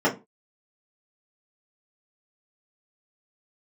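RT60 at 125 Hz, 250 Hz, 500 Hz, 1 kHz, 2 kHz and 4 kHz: 0.30 s, 0.30 s, 0.25 s, 0.25 s, 0.20 s, 0.15 s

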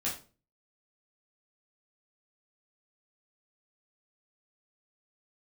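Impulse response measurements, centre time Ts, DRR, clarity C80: 27 ms, -6.5 dB, 13.0 dB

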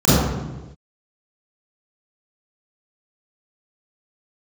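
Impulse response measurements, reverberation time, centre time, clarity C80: no single decay rate, 107 ms, -0.5 dB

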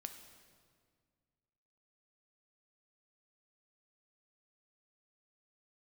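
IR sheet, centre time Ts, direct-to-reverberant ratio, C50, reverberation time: 26 ms, 6.5 dB, 8.0 dB, 1.9 s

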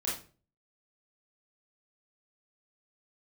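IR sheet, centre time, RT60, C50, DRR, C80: 40 ms, 0.40 s, 4.5 dB, -6.5 dB, 11.0 dB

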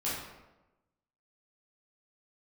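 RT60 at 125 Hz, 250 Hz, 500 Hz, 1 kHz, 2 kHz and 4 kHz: 1.1 s, 1.1 s, 1.1 s, 1.0 s, 0.85 s, 0.65 s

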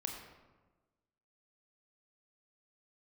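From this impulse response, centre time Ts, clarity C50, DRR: 44 ms, 4.0 dB, 1.5 dB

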